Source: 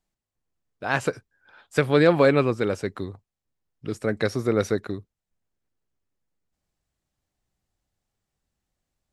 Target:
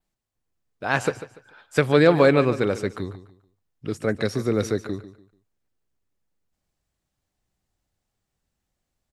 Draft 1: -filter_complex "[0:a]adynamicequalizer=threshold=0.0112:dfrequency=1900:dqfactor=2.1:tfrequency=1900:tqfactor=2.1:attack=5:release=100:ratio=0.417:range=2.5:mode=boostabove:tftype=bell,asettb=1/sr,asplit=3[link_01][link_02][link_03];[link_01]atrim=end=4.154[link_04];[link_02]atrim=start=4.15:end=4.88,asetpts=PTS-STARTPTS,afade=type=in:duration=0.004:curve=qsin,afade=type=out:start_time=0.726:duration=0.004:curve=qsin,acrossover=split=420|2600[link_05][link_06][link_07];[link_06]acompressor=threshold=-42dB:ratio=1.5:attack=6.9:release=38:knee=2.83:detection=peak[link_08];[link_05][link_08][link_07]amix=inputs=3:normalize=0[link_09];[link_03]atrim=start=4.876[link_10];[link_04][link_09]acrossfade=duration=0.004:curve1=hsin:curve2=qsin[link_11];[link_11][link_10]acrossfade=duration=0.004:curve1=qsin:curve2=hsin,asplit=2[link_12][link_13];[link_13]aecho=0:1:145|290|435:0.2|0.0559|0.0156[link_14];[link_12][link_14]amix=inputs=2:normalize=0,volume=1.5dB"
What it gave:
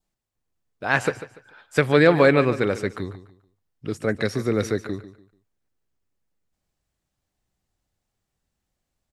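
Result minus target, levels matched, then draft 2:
2,000 Hz band +2.5 dB
-filter_complex "[0:a]adynamicequalizer=threshold=0.0112:dfrequency=6400:dqfactor=2.1:tfrequency=6400:tqfactor=2.1:attack=5:release=100:ratio=0.417:range=2.5:mode=boostabove:tftype=bell,asettb=1/sr,asplit=3[link_01][link_02][link_03];[link_01]atrim=end=4.154[link_04];[link_02]atrim=start=4.15:end=4.88,asetpts=PTS-STARTPTS,afade=type=in:duration=0.004:curve=qsin,afade=type=out:start_time=0.726:duration=0.004:curve=qsin,acrossover=split=420|2600[link_05][link_06][link_07];[link_06]acompressor=threshold=-42dB:ratio=1.5:attack=6.9:release=38:knee=2.83:detection=peak[link_08];[link_05][link_08][link_07]amix=inputs=3:normalize=0[link_09];[link_03]atrim=start=4.876[link_10];[link_04][link_09]acrossfade=duration=0.004:curve1=hsin:curve2=qsin[link_11];[link_11][link_10]acrossfade=duration=0.004:curve1=qsin:curve2=hsin,asplit=2[link_12][link_13];[link_13]aecho=0:1:145|290|435:0.2|0.0559|0.0156[link_14];[link_12][link_14]amix=inputs=2:normalize=0,volume=1.5dB"

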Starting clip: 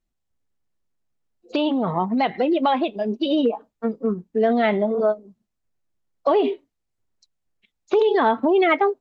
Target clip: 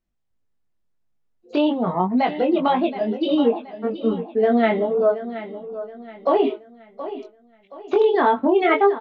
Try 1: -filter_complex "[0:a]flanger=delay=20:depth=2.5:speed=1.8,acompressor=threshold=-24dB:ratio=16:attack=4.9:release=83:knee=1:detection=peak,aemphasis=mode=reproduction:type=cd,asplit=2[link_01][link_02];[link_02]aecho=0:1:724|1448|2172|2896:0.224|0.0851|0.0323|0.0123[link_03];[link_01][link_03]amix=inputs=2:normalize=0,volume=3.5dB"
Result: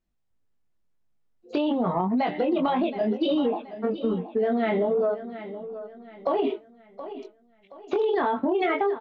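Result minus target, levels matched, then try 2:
downward compressor: peak gain reduction +11 dB
-filter_complex "[0:a]flanger=delay=20:depth=2.5:speed=1.8,aemphasis=mode=reproduction:type=cd,asplit=2[link_01][link_02];[link_02]aecho=0:1:724|1448|2172|2896:0.224|0.0851|0.0323|0.0123[link_03];[link_01][link_03]amix=inputs=2:normalize=0,volume=3.5dB"

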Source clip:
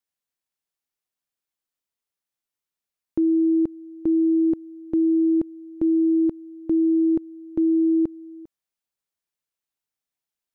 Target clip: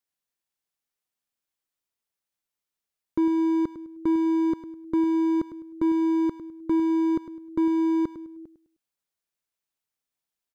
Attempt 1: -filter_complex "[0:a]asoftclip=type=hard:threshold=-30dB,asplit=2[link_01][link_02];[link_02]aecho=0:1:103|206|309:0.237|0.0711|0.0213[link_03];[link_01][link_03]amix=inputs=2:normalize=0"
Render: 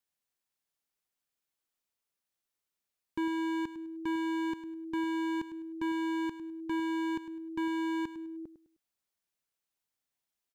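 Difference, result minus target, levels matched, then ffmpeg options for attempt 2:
hard clipping: distortion +10 dB
-filter_complex "[0:a]asoftclip=type=hard:threshold=-19dB,asplit=2[link_01][link_02];[link_02]aecho=0:1:103|206|309:0.237|0.0711|0.0213[link_03];[link_01][link_03]amix=inputs=2:normalize=0"

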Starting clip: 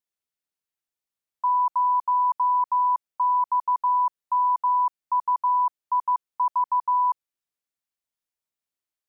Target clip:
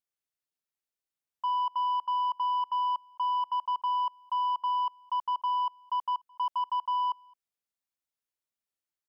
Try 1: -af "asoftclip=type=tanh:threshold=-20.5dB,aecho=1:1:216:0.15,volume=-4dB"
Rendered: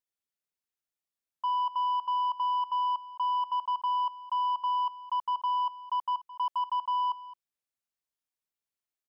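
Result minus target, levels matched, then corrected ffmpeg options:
echo-to-direct +11.5 dB
-af "asoftclip=type=tanh:threshold=-20.5dB,aecho=1:1:216:0.0398,volume=-4dB"

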